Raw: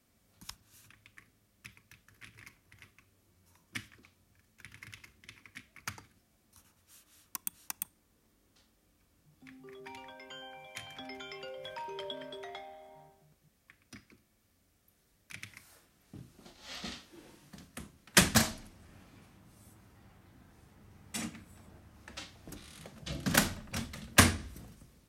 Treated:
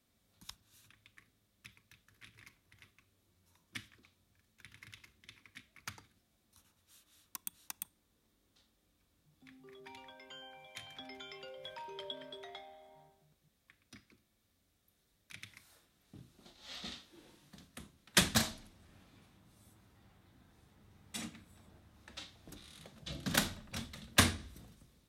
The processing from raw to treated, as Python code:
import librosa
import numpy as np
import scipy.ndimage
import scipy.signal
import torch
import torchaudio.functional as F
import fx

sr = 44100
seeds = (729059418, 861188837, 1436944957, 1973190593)

y = fx.peak_eq(x, sr, hz=3700.0, db=7.0, octaves=0.37)
y = y * 10.0 ** (-5.5 / 20.0)